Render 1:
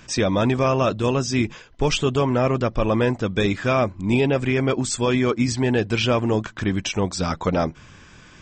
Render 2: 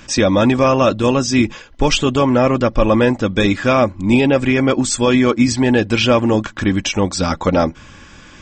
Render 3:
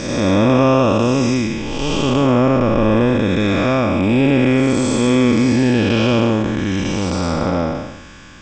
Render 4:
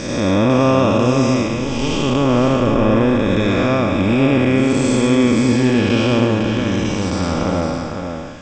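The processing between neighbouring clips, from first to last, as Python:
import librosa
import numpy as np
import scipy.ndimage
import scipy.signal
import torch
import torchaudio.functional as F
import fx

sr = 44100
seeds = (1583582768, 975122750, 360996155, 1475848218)

y1 = x + 0.36 * np.pad(x, (int(3.6 * sr / 1000.0), 0))[:len(x)]
y1 = y1 * 10.0 ** (6.0 / 20.0)
y2 = fx.spec_blur(y1, sr, span_ms=372.0)
y2 = y2 * 10.0 ** (3.0 / 20.0)
y3 = y2 + 10.0 ** (-6.5 / 20.0) * np.pad(y2, (int(504 * sr / 1000.0), 0))[:len(y2)]
y3 = y3 * 10.0 ** (-1.0 / 20.0)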